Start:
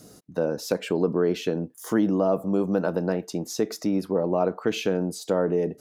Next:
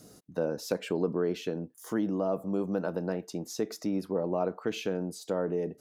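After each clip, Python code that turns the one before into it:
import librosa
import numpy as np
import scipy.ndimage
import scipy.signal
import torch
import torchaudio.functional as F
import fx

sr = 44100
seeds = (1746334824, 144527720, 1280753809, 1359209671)

y = fx.rider(x, sr, range_db=4, speed_s=2.0)
y = y * librosa.db_to_amplitude(-7.0)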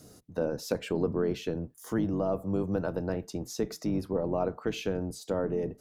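y = fx.octave_divider(x, sr, octaves=1, level_db=-5.0)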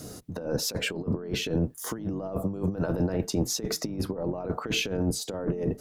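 y = fx.over_compress(x, sr, threshold_db=-34.0, ratio=-0.5)
y = y * librosa.db_to_amplitude(6.5)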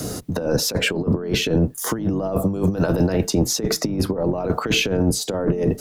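y = fx.band_squash(x, sr, depth_pct=40)
y = y * librosa.db_to_amplitude(8.5)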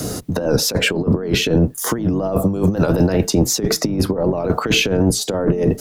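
y = fx.record_warp(x, sr, rpm=78.0, depth_cents=100.0)
y = y * librosa.db_to_amplitude(3.5)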